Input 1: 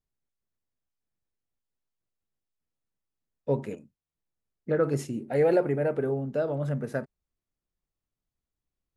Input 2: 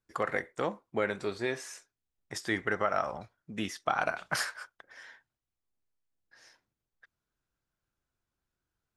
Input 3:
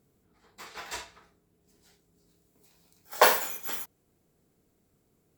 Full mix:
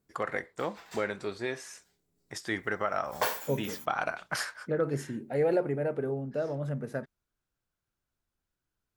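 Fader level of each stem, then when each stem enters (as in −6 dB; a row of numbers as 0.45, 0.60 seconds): −4.0, −1.5, −10.0 decibels; 0.00, 0.00, 0.00 seconds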